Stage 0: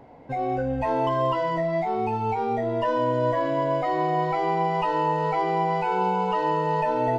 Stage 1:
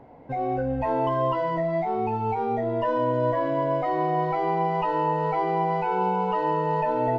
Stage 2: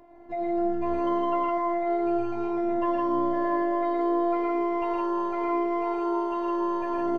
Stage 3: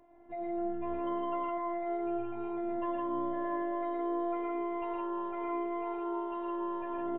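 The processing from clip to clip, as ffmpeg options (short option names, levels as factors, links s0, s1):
-af "highshelf=f=3500:g=-12"
-af "afftfilt=real='hypot(re,im)*cos(PI*b)':imag='0':win_size=512:overlap=0.75,aecho=1:1:113.7|160.3:0.708|0.794"
-af "aresample=8000,aresample=44100,volume=0.376"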